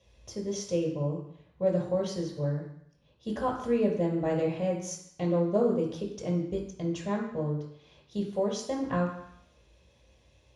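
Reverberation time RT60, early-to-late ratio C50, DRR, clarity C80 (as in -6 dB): 0.70 s, 5.5 dB, -2.5 dB, 8.5 dB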